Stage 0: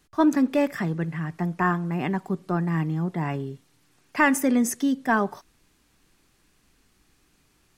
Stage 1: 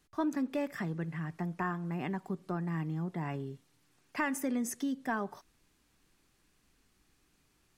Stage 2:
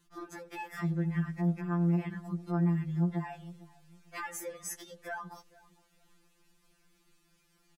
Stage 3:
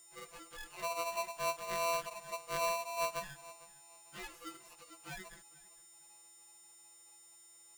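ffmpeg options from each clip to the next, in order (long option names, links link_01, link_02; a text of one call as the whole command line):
ffmpeg -i in.wav -af "acompressor=threshold=-26dB:ratio=2,volume=-7dB" out.wav
ffmpeg -i in.wav -filter_complex "[0:a]alimiter=level_in=5.5dB:limit=-24dB:level=0:latency=1:release=78,volume=-5.5dB,asplit=2[link_01][link_02];[link_02]adelay=452,lowpass=frequency=860:poles=1,volume=-18.5dB,asplit=2[link_03][link_04];[link_04]adelay=452,lowpass=frequency=860:poles=1,volume=0.28[link_05];[link_01][link_03][link_05]amix=inputs=3:normalize=0,afftfilt=real='re*2.83*eq(mod(b,8),0)':imag='im*2.83*eq(mod(b,8),0)':win_size=2048:overlap=0.75,volume=4dB" out.wav
ffmpeg -i in.wav -filter_complex "[0:a]aeval=exprs='val(0)+0.00562*sin(2*PI*7900*n/s)':channel_layout=same,acrossover=split=2800[link_01][link_02];[link_02]acompressor=threshold=-52dB:ratio=4:attack=1:release=60[link_03];[link_01][link_03]amix=inputs=2:normalize=0,aeval=exprs='val(0)*sgn(sin(2*PI*840*n/s))':channel_layout=same,volume=-7dB" out.wav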